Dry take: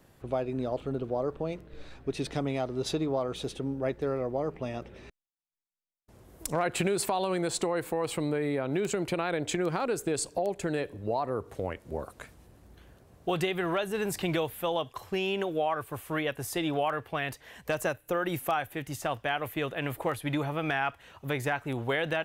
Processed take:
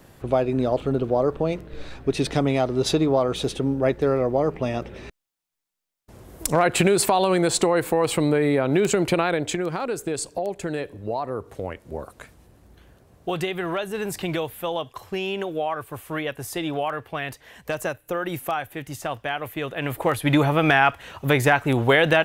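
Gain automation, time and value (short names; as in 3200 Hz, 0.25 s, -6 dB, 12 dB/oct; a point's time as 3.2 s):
9.18 s +9.5 dB
9.65 s +2.5 dB
19.63 s +2.5 dB
20.36 s +12 dB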